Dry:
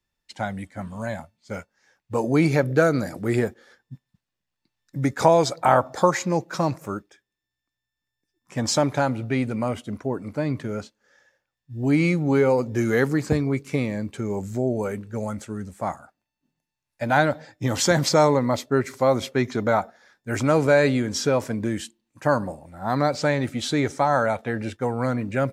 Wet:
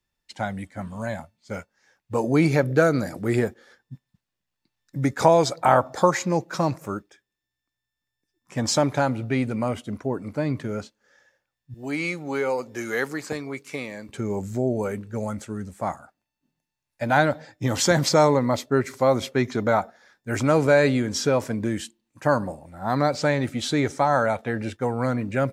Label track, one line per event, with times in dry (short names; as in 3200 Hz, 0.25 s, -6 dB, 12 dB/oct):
11.740000	14.090000	HPF 810 Hz 6 dB/oct